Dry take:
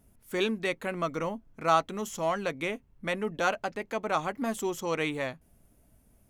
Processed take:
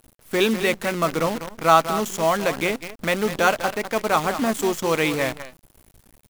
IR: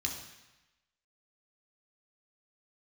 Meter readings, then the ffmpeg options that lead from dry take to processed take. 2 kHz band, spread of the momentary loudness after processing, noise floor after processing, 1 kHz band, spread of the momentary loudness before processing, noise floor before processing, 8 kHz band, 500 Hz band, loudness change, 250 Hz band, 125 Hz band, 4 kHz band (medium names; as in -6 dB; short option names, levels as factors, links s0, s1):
+9.0 dB, 8 LU, -59 dBFS, +9.0 dB, 9 LU, -64 dBFS, +11.5 dB, +9.0 dB, +9.0 dB, +9.0 dB, +9.0 dB, +10.0 dB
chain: -filter_complex "[0:a]asplit=2[s0][s1];[s1]adelay=198.3,volume=0.282,highshelf=f=4000:g=-4.46[s2];[s0][s2]amix=inputs=2:normalize=0,acrusher=bits=7:dc=4:mix=0:aa=0.000001,volume=2.66"